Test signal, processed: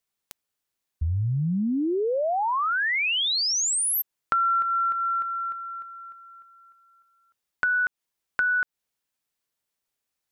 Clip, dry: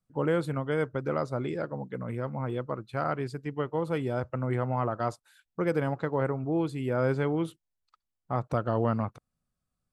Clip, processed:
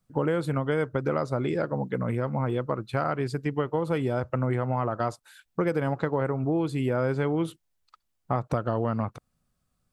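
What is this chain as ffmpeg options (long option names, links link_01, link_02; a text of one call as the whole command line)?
ffmpeg -i in.wav -af "acompressor=threshold=-32dB:ratio=4,volume=8.5dB" out.wav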